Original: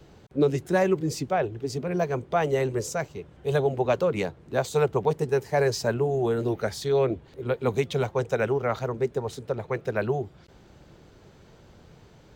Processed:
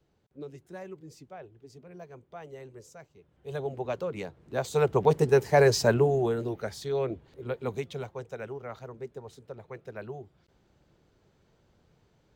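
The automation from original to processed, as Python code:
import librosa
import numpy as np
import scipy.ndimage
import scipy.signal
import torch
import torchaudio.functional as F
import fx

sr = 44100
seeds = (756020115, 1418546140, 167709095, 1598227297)

y = fx.gain(x, sr, db=fx.line((3.14, -20.0), (3.66, -9.0), (4.27, -9.0), (5.16, 3.0), (5.99, 3.0), (6.5, -6.5), (7.58, -6.5), (8.27, -13.5)))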